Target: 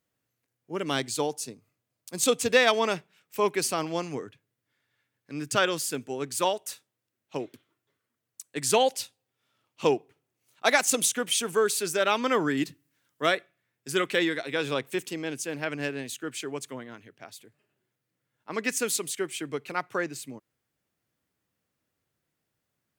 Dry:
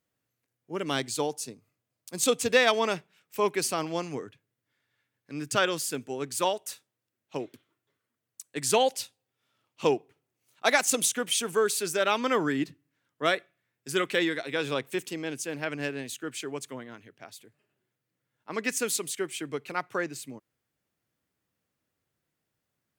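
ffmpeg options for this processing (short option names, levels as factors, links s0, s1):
-filter_complex "[0:a]asettb=1/sr,asplit=3[s0][s1][s2];[s0]atrim=end=12.574[s3];[s1]atrim=start=12.57:end=13.26,asetpts=PTS-STARTPTS,afade=t=in:d=0.004:c=qsin,afade=t=out:st=0.686:d=0.004:c=qsin,highshelf=f=4000:g=10.5[s4];[s2]atrim=start=13.256[s5];[s3][s4]acrossfade=d=0.004:c1=hsin:c2=qsin[s6];[s6][s5]acrossfade=d=0.004:c1=qsin:c2=hsin,volume=1.12"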